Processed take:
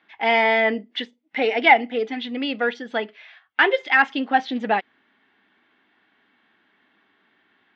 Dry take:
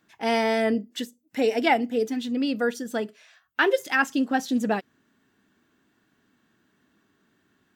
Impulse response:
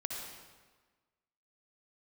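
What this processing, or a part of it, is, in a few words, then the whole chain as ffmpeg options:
overdrive pedal into a guitar cabinet: -filter_complex "[0:a]asplit=2[link_01][link_02];[link_02]highpass=frequency=720:poles=1,volume=9dB,asoftclip=type=tanh:threshold=-8.5dB[link_03];[link_01][link_03]amix=inputs=2:normalize=0,lowpass=frequency=5400:poles=1,volume=-6dB,highpass=98,equalizer=frequency=140:width_type=q:width=4:gain=-9,equalizer=frequency=810:width_type=q:width=4:gain=7,equalizer=frequency=2100:width_type=q:width=4:gain=9,equalizer=frequency=3300:width_type=q:width=4:gain=5,lowpass=frequency=3900:width=0.5412,lowpass=frequency=3900:width=1.3066"

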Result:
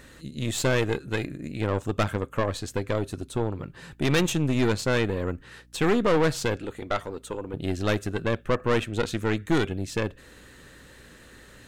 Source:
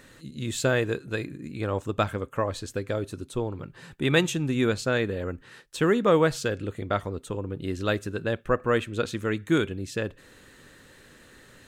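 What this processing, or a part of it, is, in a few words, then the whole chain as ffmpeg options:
valve amplifier with mains hum: -filter_complex "[0:a]asettb=1/sr,asplit=3[link_01][link_02][link_03];[link_01]atrim=end=6.564[link_04];[link_02]atrim=start=6.56:end=7.54,asetpts=PTS-STARTPTS,afade=type=in:duration=0.004:curve=qsin,afade=type=out:start_time=0.976:duration=0.004:curve=qsin,highpass=frequency=280:poles=1[link_05];[link_03]atrim=start=7.536[link_06];[link_04][link_05]acrossfade=duration=0.004:curve1=hsin:curve2=qsin[link_07];[link_07][link_06]acrossfade=duration=0.004:curve1=qsin:curve2=hsin,aeval=exprs='(tanh(14.1*val(0)+0.65)-tanh(0.65))/14.1':channel_layout=same,aeval=exprs='val(0)+0.000891*(sin(2*PI*60*n/s)+sin(2*PI*2*60*n/s)/2+sin(2*PI*3*60*n/s)/3+sin(2*PI*4*60*n/s)/4+sin(2*PI*5*60*n/s)/5)':channel_layout=same,volume=5.5dB"

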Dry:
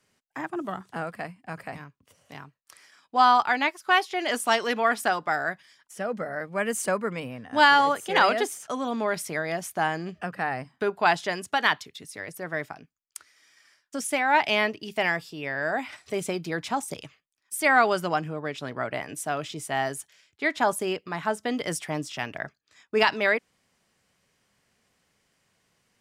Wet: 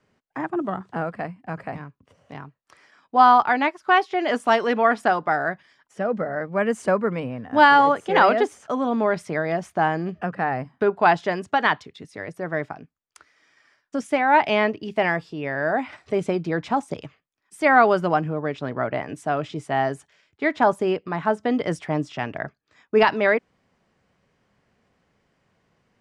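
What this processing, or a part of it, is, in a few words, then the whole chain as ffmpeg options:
through cloth: -af "lowpass=7200,highshelf=frequency=2300:gain=-15,volume=7dB"

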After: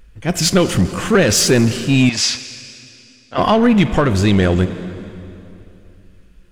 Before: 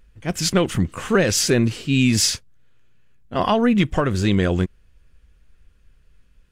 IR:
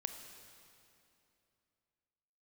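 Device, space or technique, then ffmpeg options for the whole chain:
saturated reverb return: -filter_complex "[0:a]asplit=2[link_01][link_02];[1:a]atrim=start_sample=2205[link_03];[link_02][link_03]afir=irnorm=-1:irlink=0,asoftclip=type=tanh:threshold=-21dB,volume=3dB[link_04];[link_01][link_04]amix=inputs=2:normalize=0,asettb=1/sr,asplit=3[link_05][link_06][link_07];[link_05]atrim=end=2.094[link_08];[link_06]atrim=start=2.09:end=3.38,asetpts=PTS-STARTPTS,afade=type=in:duration=0.004:curve=qsin,afade=type=out:start_time=1.286:duration=0.004:curve=qsin,acrossover=split=590 6700:gain=0.178 1 0.0794[link_09][link_10][link_11];[link_09][link_10][link_11]amix=inputs=3:normalize=0[link_12];[link_07]atrim=start=3.376[link_13];[link_08][link_12]acrossfade=duration=0.004:curve1=hsin:curve2=qsin[link_14];[link_14][link_13]acrossfade=duration=0.004:curve1=qsin:curve2=hsin,volume=1dB"

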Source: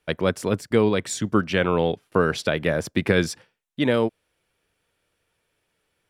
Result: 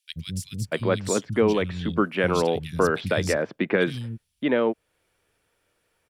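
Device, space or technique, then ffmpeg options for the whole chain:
parallel compression: -filter_complex "[0:a]acrossover=split=170|3200[link_01][link_02][link_03];[link_01]adelay=80[link_04];[link_02]adelay=640[link_05];[link_04][link_05][link_03]amix=inputs=3:normalize=0,asplit=2[link_06][link_07];[link_07]acompressor=threshold=-34dB:ratio=6,volume=-3dB[link_08];[link_06][link_08]amix=inputs=2:normalize=0,volume=-1.5dB"

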